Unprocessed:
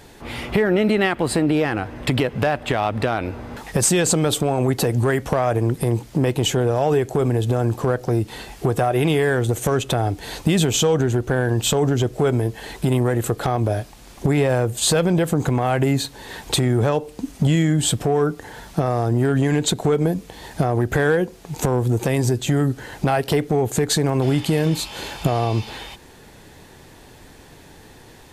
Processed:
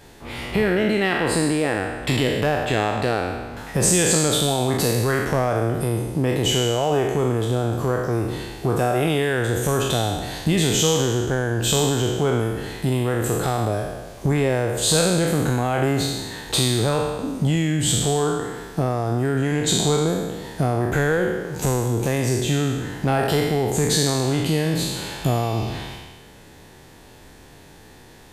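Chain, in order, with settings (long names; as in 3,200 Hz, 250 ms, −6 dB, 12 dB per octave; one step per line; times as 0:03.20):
peak hold with a decay on every bin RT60 1.38 s
level −4 dB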